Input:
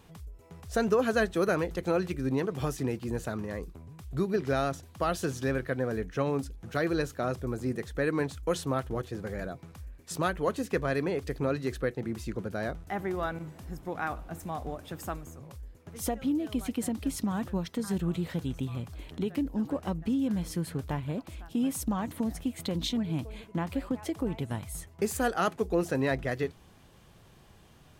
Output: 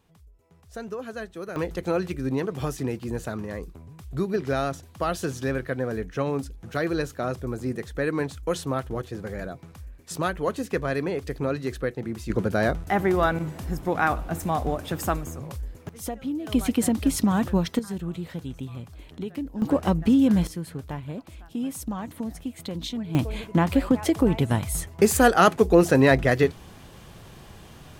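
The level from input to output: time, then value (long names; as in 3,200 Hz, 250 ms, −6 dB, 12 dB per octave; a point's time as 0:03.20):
−9 dB
from 0:01.56 +2.5 dB
from 0:12.30 +10.5 dB
from 0:15.89 −1 dB
from 0:16.47 +9 dB
from 0:17.79 −1.5 dB
from 0:19.62 +10 dB
from 0:20.47 −1 dB
from 0:23.15 +11 dB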